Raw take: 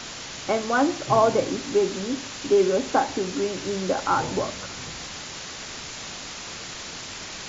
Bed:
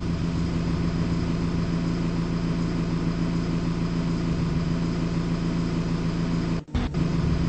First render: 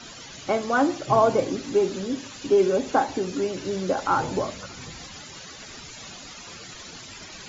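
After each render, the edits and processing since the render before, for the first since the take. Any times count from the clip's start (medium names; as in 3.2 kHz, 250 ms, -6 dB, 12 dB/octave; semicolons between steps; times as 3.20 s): noise reduction 13 dB, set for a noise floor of -37 dBFS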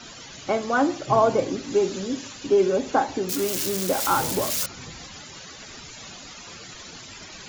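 1.70–2.33 s: treble shelf 4.8 kHz +5.5 dB; 3.29–4.66 s: zero-crossing glitches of -17 dBFS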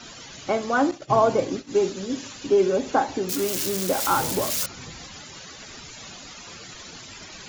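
0.91–2.14 s: expander -29 dBFS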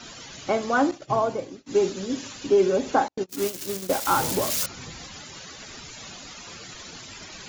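0.79–1.66 s: fade out, to -19 dB; 3.08–4.13 s: gate -26 dBFS, range -51 dB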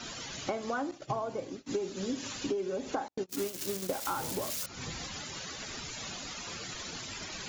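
compression 16:1, threshold -30 dBFS, peak gain reduction 16 dB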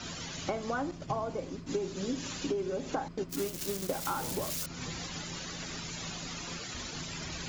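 add bed -21.5 dB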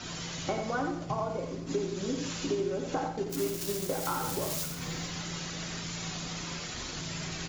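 delay 88 ms -7 dB; two-slope reverb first 0.81 s, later 2.1 s, from -25 dB, DRR 5.5 dB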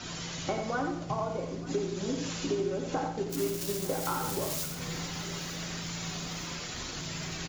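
feedback delay 903 ms, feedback 53%, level -19 dB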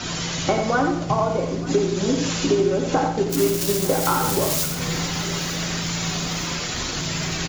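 trim +11.5 dB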